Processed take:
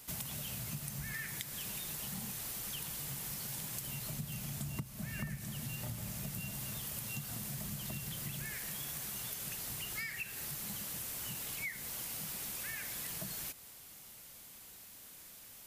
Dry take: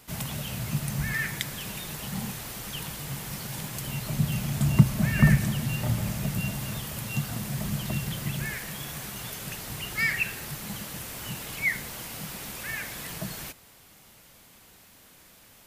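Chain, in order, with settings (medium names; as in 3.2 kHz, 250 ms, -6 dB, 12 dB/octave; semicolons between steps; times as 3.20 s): treble shelf 4.4 kHz +10 dB; compression 8:1, threshold -32 dBFS, peak gain reduction 21.5 dB; trim -6 dB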